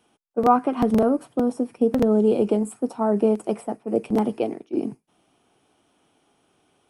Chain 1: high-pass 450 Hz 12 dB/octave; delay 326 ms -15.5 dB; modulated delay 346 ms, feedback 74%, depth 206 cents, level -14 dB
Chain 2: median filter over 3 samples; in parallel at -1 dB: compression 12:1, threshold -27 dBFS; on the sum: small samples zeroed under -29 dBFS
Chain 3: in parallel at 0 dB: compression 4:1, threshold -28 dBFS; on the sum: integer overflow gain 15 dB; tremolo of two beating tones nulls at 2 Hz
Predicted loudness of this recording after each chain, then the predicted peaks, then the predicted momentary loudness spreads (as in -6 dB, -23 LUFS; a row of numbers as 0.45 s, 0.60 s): -26.5 LUFS, -20.5 LUFS, -25.0 LUFS; -6.0 dBFS, -4.5 dBFS, -15.0 dBFS; 19 LU, 8 LU, 8 LU